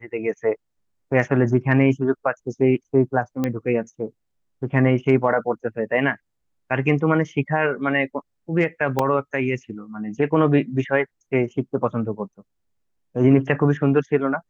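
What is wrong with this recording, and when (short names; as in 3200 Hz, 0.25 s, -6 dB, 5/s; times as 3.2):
3.44 pop -11 dBFS
8.99 gap 3 ms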